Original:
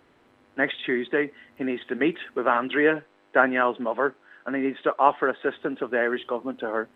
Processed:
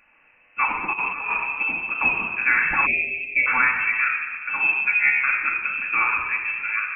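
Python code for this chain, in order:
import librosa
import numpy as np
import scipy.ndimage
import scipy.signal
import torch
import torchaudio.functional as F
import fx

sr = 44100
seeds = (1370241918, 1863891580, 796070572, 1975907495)

y = fx.chord_vocoder(x, sr, chord='bare fifth', root=49, at=(4.67, 5.24))
y = fx.highpass(y, sr, hz=260.0, slope=6)
y = fx.room_shoebox(y, sr, seeds[0], volume_m3=2500.0, walls='mixed', distance_m=2.5)
y = fx.over_compress(y, sr, threshold_db=-26.0, ratio=-0.5, at=(0.92, 1.63), fade=0.02)
y = fx.freq_invert(y, sr, carrier_hz=2900)
y = fx.cheby1_bandstop(y, sr, low_hz=670.0, high_hz=2100.0, order=4, at=(2.85, 3.46), fade=0.02)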